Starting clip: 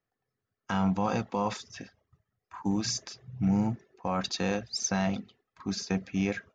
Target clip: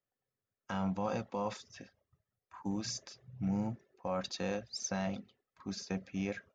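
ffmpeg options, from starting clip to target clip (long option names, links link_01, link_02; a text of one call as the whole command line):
ffmpeg -i in.wav -af "equalizer=frequency=560:width_type=o:width=0.21:gain=8.5,volume=-8dB" out.wav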